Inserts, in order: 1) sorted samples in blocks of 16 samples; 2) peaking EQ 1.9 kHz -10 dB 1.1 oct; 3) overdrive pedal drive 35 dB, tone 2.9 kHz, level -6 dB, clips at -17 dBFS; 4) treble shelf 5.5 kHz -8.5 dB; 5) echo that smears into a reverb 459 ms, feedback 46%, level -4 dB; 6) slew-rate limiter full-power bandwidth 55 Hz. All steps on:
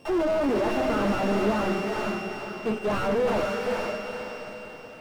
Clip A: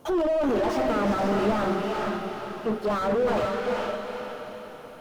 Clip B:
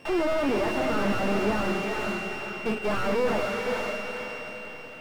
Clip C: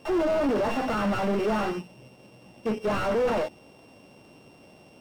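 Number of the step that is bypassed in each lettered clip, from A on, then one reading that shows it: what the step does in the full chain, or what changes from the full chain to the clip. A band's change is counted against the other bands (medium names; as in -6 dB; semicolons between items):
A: 1, distortion -3 dB; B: 2, 2 kHz band +3.0 dB; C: 5, crest factor change -2.5 dB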